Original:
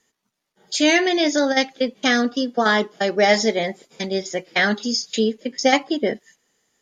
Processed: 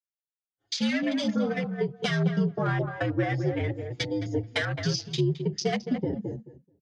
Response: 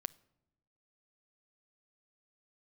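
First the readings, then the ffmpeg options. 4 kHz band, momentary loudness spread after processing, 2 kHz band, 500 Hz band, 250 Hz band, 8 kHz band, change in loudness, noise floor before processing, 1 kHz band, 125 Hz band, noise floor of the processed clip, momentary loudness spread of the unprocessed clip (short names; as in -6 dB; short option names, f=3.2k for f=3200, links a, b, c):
-10.5 dB, 6 LU, -12.0 dB, -10.0 dB, -6.0 dB, -12.0 dB, -8.5 dB, -79 dBFS, -13.0 dB, +9.5 dB, under -85 dBFS, 9 LU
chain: -filter_complex "[0:a]afreqshift=-79,agate=range=-33dB:threshold=-50dB:ratio=3:detection=peak,highshelf=f=4.1k:g=7,acrossover=split=150[a][b];[a]alimiter=level_in=7.5dB:limit=-24dB:level=0:latency=1,volume=-7.5dB[c];[b]acompressor=threshold=-28dB:ratio=16[d];[c][d]amix=inputs=2:normalize=0,afwtdn=0.0158,adynamicsmooth=sensitivity=5:basefreq=5k,asplit=2[e][f];[f]adelay=216,lowpass=f=1k:p=1,volume=-5dB,asplit=2[g][h];[h]adelay=216,lowpass=f=1k:p=1,volume=0.18,asplit=2[i][j];[j]adelay=216,lowpass=f=1k:p=1,volume=0.18[k];[g][i][k]amix=inputs=3:normalize=0[l];[e][l]amix=inputs=2:normalize=0,aresample=22050,aresample=44100,asplit=2[m][n];[n]adelay=6.8,afreqshift=1.6[o];[m][o]amix=inputs=2:normalize=1,volume=5.5dB"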